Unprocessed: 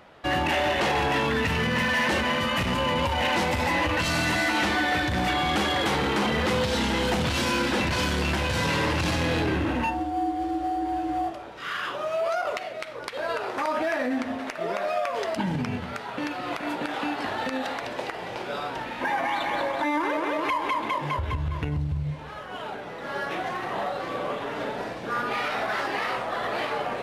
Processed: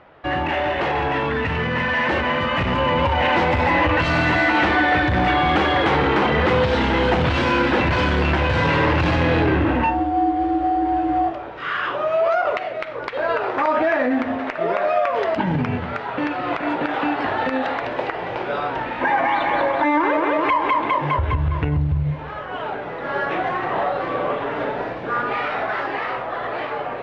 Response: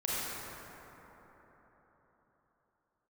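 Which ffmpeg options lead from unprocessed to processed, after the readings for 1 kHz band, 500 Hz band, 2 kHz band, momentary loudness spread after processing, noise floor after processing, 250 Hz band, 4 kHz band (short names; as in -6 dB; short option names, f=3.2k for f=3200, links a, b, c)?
+7.0 dB, +7.0 dB, +5.5 dB, 8 LU, -30 dBFS, +6.0 dB, +0.5 dB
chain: -af "dynaudnorm=f=380:g=13:m=5dB,lowpass=2.4k,equalizer=f=210:t=o:w=0.25:g=-8.5,volume=3dB"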